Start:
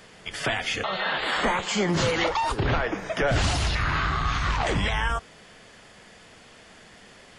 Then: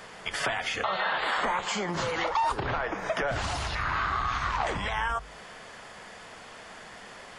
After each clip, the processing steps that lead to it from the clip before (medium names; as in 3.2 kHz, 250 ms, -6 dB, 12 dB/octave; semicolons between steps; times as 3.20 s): hum notches 50/100/150 Hz; compression, threshold -31 dBFS, peak gain reduction 11 dB; FFT filter 310 Hz 0 dB, 1 kHz +9 dB, 2.8 kHz +2 dB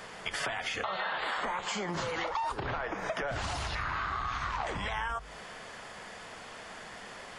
compression 3:1, threshold -32 dBFS, peak gain reduction 7.5 dB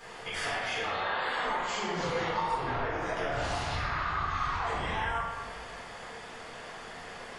reverberation RT60 1.6 s, pre-delay 4 ms, DRR -9.5 dB; trim -9 dB